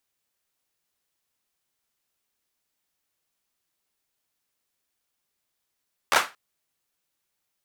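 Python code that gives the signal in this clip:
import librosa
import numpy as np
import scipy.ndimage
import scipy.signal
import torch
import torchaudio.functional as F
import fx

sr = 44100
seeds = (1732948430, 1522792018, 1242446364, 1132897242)

y = fx.drum_clap(sr, seeds[0], length_s=0.23, bursts=4, spacing_ms=13, hz=1200.0, decay_s=0.25)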